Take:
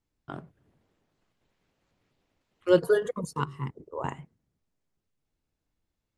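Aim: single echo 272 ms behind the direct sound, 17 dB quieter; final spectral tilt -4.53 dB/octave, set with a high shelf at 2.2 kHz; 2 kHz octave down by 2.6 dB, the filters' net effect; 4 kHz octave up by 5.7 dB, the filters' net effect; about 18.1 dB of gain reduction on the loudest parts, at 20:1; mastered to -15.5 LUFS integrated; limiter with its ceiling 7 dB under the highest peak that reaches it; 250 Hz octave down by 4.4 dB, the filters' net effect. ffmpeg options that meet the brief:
-af "equalizer=f=250:t=o:g=-9,equalizer=f=2000:t=o:g=-9,highshelf=f=2200:g=8,equalizer=f=4000:t=o:g=5,acompressor=threshold=0.02:ratio=20,alimiter=level_in=2:limit=0.0631:level=0:latency=1,volume=0.501,aecho=1:1:272:0.141,volume=26.6"

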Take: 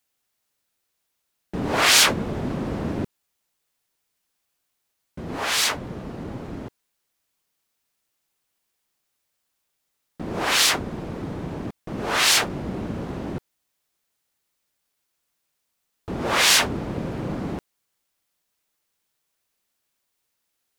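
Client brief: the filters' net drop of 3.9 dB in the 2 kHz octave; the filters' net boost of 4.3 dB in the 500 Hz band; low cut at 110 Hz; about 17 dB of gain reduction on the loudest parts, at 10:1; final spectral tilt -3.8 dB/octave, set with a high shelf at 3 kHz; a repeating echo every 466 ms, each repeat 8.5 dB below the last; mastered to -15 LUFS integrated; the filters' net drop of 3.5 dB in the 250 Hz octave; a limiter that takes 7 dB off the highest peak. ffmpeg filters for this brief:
-af "highpass=110,equalizer=f=250:t=o:g=-7,equalizer=f=500:t=o:g=7.5,equalizer=f=2000:t=o:g=-8.5,highshelf=f=3000:g=7.5,acompressor=threshold=0.0501:ratio=10,alimiter=limit=0.0794:level=0:latency=1,aecho=1:1:466|932|1398|1864:0.376|0.143|0.0543|0.0206,volume=7.94"

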